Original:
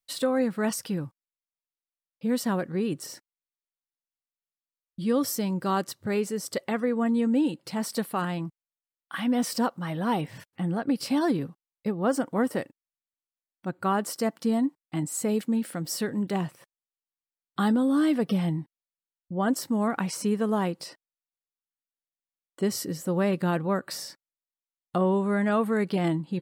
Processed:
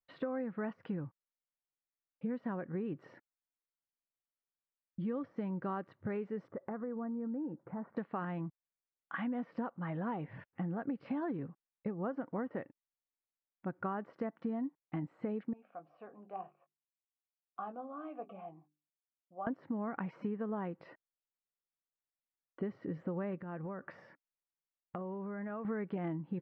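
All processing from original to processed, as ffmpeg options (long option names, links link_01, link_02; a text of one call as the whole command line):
ffmpeg -i in.wav -filter_complex "[0:a]asettb=1/sr,asplit=3[link_01][link_02][link_03];[link_01]atrim=end=6.484[link_04];[link_02]atrim=start=6.48:end=7.97,asetpts=PTS-STARTPTS,afade=type=in:duration=0.004:curve=qsin,afade=type=out:start_time=1.486:duration=0.004:curve=qsin,lowpass=frequency=1500:width=0.5412,lowpass=frequency=1500:width=1.3066,acompressor=threshold=-36dB:ratio=2.5:attack=3.2:release=140:knee=1:detection=peak[link_05];[link_03]atrim=start=7.966[link_06];[link_04][link_05]acrossfade=duration=0.004:curve1=hsin:curve2=qsin[link_07];[link_07][link_06]acrossfade=duration=0.004:curve1=qsin:curve2=hsin,asettb=1/sr,asplit=3[link_08][link_09][link_10];[link_08]atrim=end=15.534[link_11];[link_09]atrim=start=15.53:end=19.47,asetpts=PTS-STARTPTS,afade=type=in:duration=0.004:curve=qsin,afade=type=out:start_time=3.936:duration=0.004:curve=qsin,asplit=3[link_12][link_13][link_14];[link_12]bandpass=frequency=730:width_type=q:width=8,volume=0dB[link_15];[link_13]bandpass=frequency=1090:width_type=q:width=8,volume=-6dB[link_16];[link_14]bandpass=frequency=2440:width_type=q:width=8,volume=-9dB[link_17];[link_15][link_16][link_17]amix=inputs=3:normalize=0,bandreject=frequency=50:width_type=h:width=6,bandreject=frequency=100:width_type=h:width=6,bandreject=frequency=150:width_type=h:width=6,bandreject=frequency=200:width_type=h:width=6,bandreject=frequency=250:width_type=h:width=6,bandreject=frequency=300:width_type=h:width=6,bandreject=frequency=350:width_type=h:width=6,bandreject=frequency=400:width_type=h:width=6,asplit=2[link_18][link_19];[link_19]adelay=20,volume=-9dB[link_20];[link_18][link_20]amix=inputs=2:normalize=0,atrim=end_sample=173754[link_21];[link_10]atrim=start=19.466[link_22];[link_11][link_21]acrossfade=duration=0.004:curve1=hsin:curve2=qsin[link_23];[link_23][link_22]acrossfade=duration=0.004:curve1=qsin:curve2=hsin,asettb=1/sr,asplit=3[link_24][link_25][link_26];[link_24]atrim=end=23.424[link_27];[link_25]atrim=start=23.42:end=25.65,asetpts=PTS-STARTPTS,afade=type=in:duration=0.004:curve=qsin,afade=type=out:start_time=2.226:duration=0.004:curve=qsin,equalizer=frequency=4100:width=3.8:gain=-10,bandreject=frequency=280:width=6.3,acompressor=threshold=-34dB:ratio=10:attack=3.2:release=140:knee=1:detection=peak[link_28];[link_26]atrim=start=25.646[link_29];[link_27][link_28]acrossfade=duration=0.004:curve1=hsin:curve2=qsin[link_30];[link_30][link_29]acrossfade=duration=0.004:curve1=qsin:curve2=hsin,deesser=0.7,lowpass=frequency=2100:width=0.5412,lowpass=frequency=2100:width=1.3066,acompressor=threshold=-31dB:ratio=6,volume=-3.5dB" out.wav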